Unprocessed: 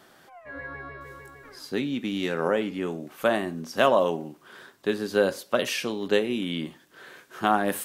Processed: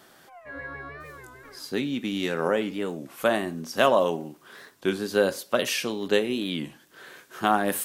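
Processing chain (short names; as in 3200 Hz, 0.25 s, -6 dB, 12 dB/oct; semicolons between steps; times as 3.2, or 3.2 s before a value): high shelf 4900 Hz +5 dB; record warp 33 1/3 rpm, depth 160 cents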